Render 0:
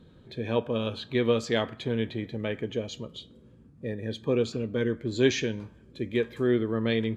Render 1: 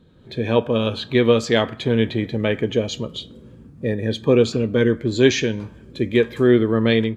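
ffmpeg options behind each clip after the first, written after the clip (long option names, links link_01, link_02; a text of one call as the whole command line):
ffmpeg -i in.wav -af "dynaudnorm=framelen=180:gausssize=3:maxgain=11dB" out.wav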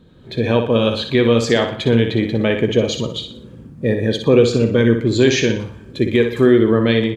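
ffmpeg -i in.wav -filter_complex "[0:a]alimiter=limit=-7.5dB:level=0:latency=1:release=149,asplit=2[link_01][link_02];[link_02]aecho=0:1:60|120|180|240:0.422|0.164|0.0641|0.025[link_03];[link_01][link_03]amix=inputs=2:normalize=0,volume=4.5dB" out.wav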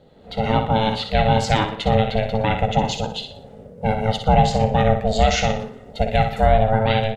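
ffmpeg -i in.wav -af "aeval=exprs='val(0)*sin(2*PI*330*n/s)':channel_layout=same" out.wav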